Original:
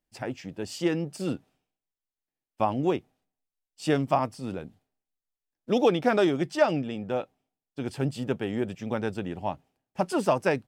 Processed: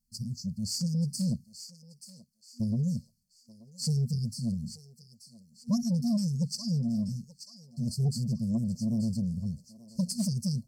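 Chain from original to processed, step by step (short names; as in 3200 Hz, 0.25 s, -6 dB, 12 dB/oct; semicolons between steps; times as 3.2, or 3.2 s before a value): FFT band-reject 240–4200 Hz; added harmonics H 5 -19 dB, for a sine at -22 dBFS; thinning echo 0.882 s, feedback 36%, high-pass 850 Hz, level -11 dB; gain +3.5 dB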